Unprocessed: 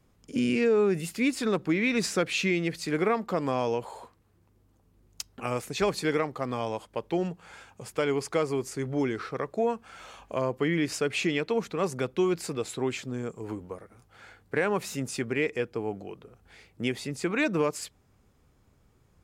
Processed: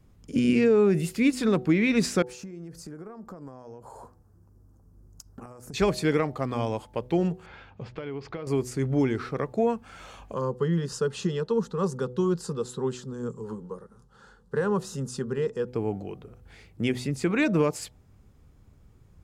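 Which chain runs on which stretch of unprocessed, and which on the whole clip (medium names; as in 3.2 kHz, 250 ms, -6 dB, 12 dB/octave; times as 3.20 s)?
2.22–5.74 s: high-order bell 2.8 kHz -15 dB 1.3 oct + compression 16:1, threshold -41 dBFS
7.46–8.47 s: low-pass 4.1 kHz 24 dB/octave + compression 8:1, threshold -34 dBFS
10.33–15.68 s: low-pass 8.9 kHz + static phaser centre 450 Hz, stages 8
whole clip: bass shelf 240 Hz +10.5 dB; de-hum 124.4 Hz, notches 7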